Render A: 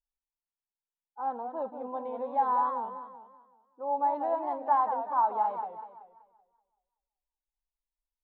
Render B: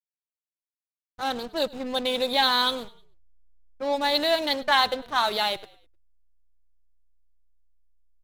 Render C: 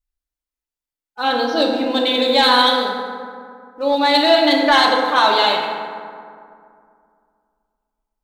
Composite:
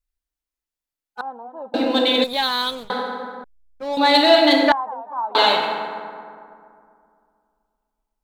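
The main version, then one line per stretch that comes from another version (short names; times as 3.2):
C
1.21–1.74 from A
2.24–2.9 from B
3.44–3.97 from B
4.72–5.35 from A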